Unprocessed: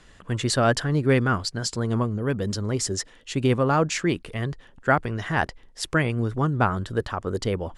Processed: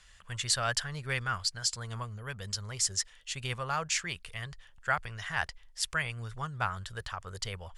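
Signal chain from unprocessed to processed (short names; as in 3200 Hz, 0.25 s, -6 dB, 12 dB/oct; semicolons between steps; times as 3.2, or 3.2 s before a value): passive tone stack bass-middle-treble 10-0-10; notch 3900 Hz, Q 29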